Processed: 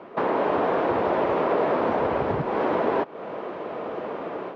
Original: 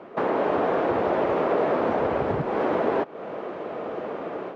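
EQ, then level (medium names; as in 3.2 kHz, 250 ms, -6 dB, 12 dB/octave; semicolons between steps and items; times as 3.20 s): distance through air 150 m; peaking EQ 980 Hz +4 dB 0.26 oct; treble shelf 4 kHz +11.5 dB; 0.0 dB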